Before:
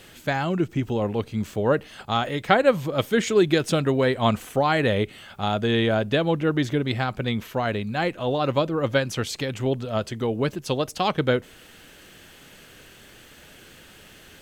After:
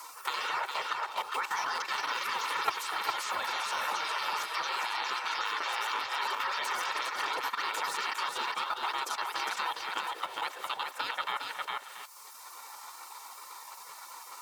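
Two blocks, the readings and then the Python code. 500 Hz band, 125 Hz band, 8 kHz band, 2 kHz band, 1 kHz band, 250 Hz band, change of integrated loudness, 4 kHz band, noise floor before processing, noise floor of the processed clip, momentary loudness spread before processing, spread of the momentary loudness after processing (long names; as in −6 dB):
−22.5 dB, below −40 dB, −2.0 dB, −3.5 dB, −3.0 dB, −31.0 dB, −8.5 dB, −3.0 dB, −49 dBFS, −49 dBFS, 7 LU, 14 LU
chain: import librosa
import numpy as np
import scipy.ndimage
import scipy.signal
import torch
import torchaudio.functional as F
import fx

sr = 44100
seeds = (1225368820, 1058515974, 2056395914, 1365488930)

p1 = fx.octave_divider(x, sr, octaves=1, level_db=0.0)
p2 = fx.echo_pitch(p1, sr, ms=104, semitones=3, count=3, db_per_echo=-3.0)
p3 = p2 + fx.echo_feedback(p2, sr, ms=265, feedback_pct=18, wet_db=-16.5, dry=0)
p4 = fx.spec_gate(p3, sr, threshold_db=-20, keep='weak')
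p5 = fx.level_steps(p4, sr, step_db=13)
p6 = scipy.signal.sosfilt(scipy.signal.butter(2, 190.0, 'highpass', fs=sr, output='sos'), p5)
p7 = fx.peak_eq(p6, sr, hz=1100.0, db=13.5, octaves=1.1)
p8 = p7 + 0.4 * np.pad(p7, (int(2.2 * sr / 1000.0), 0))[:len(p7)]
p9 = p8 + 10.0 ** (-5.0 / 20.0) * np.pad(p8, (int(407 * sr / 1000.0), 0))[:len(p8)]
p10 = fx.band_squash(p9, sr, depth_pct=70)
y = p10 * 10.0 ** (-1.5 / 20.0)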